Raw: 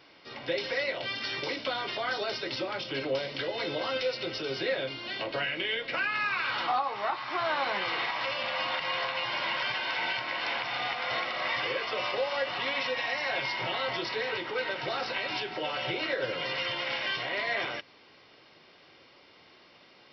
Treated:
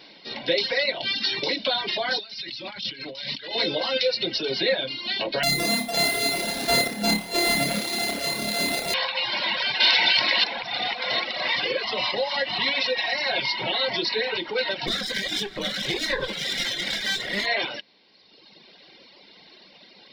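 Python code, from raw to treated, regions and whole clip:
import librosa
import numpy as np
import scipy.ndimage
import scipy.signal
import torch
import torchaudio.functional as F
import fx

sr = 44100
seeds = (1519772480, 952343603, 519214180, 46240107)

y = fx.chain(x, sr, fx.peak_eq(hz=470.0, db=-12.5, octaves=1.7),
    fx.over_compress(threshold_db=-43.0, ratio=-1.0), at=(2.19, 3.55))
y = fx.chain(y, sr, fx.sample_sort(block=64),
    fx.low_shelf(hz=160.0, db=5.0),
    fx.room_flutter(wall_m=4.9, rt60_s=0.87), at=(5.43, 8.94))
y = fx.chain(y, sr, fx.high_shelf(hz=2200.0, db=9.0),
    fx.env_flatten(amount_pct=70), at=(9.8, 10.44))
y = fx.chain(y, sr, fx.peak_eq(hz=83.0, db=4.0, octaves=1.2),
    fx.comb(ms=1.0, depth=0.3), at=(11.84, 12.73))
y = fx.chain(y, sr, fx.lower_of_two(delay_ms=0.56),
    fx.doubler(ms=20.0, db=-11), at=(14.87, 17.46))
y = fx.graphic_eq_31(y, sr, hz=(200, 1250, 4000), db=(10, -11, 11))
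y = fx.dereverb_blind(y, sr, rt60_s=1.5)
y = fx.peak_eq(y, sr, hz=90.0, db=-13.5, octaves=0.79)
y = y * 10.0 ** (7.5 / 20.0)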